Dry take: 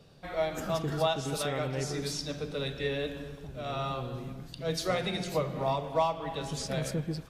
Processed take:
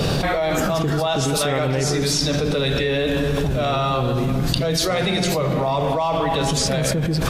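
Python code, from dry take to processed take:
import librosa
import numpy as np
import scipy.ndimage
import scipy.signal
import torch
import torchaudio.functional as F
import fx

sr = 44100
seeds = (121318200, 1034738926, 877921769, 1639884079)

y = fx.env_flatten(x, sr, amount_pct=100)
y = y * 10.0 ** (3.0 / 20.0)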